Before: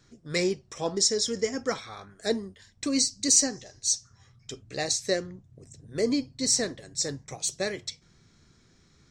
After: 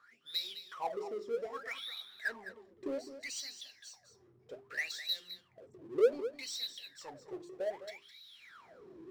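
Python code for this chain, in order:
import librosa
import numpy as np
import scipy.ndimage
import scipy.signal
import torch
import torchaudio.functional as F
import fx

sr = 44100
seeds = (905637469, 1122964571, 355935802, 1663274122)

p1 = fx.recorder_agc(x, sr, target_db=-13.0, rise_db_per_s=10.0, max_gain_db=30)
p2 = fx.notch(p1, sr, hz=6400.0, q=9.2)
p3 = fx.wah_lfo(p2, sr, hz=0.64, low_hz=340.0, high_hz=3900.0, q=22.0)
p4 = fx.hum_notches(p3, sr, base_hz=50, count=8)
p5 = fx.power_curve(p4, sr, exponent=0.7)
y = p5 + fx.echo_single(p5, sr, ms=209, db=-12.0, dry=0)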